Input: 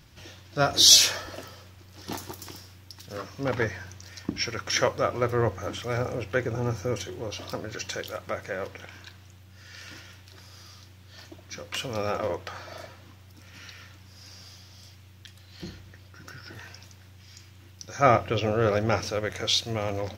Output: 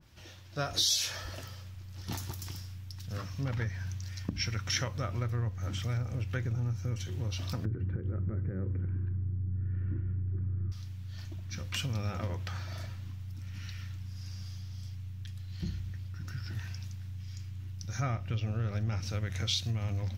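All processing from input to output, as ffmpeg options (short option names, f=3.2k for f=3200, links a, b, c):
-filter_complex "[0:a]asettb=1/sr,asplit=3[a][b][c];[a]atrim=end=7.654[d];[b]atrim=start=7.65:end=10.72,asetpts=PTS-STARTPTS,afade=t=in:d=0.004:c=qsin,afade=t=out:st=3.066:d=0.004:c=qsin,lowpass=f=1.5k:w=0.5412,lowpass=f=1.5k:w=1.3066,lowshelf=f=520:t=q:w=3:g=10.5,acompressor=threshold=-27dB:ratio=3:attack=3.2:release=140:knee=1:detection=peak[e];[c]atrim=start=10.716[f];[d][e]acrossfade=d=0.004:c1=hsin:c2=qsin[g];[g][f]acrossfade=d=0.004:c1=qsin:c2=hsin,asubboost=boost=10.5:cutoff=140,acompressor=threshold=-24dB:ratio=6,adynamicequalizer=threshold=0.00398:dfrequency=1700:dqfactor=0.7:tfrequency=1700:tqfactor=0.7:attack=5:release=100:ratio=0.375:range=2:mode=boostabove:tftype=highshelf,volume=-6dB"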